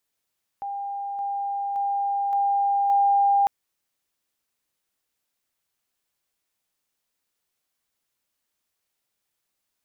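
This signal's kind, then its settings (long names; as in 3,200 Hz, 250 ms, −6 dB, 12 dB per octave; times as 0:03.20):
level staircase 801 Hz −28 dBFS, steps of 3 dB, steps 5, 0.57 s 0.00 s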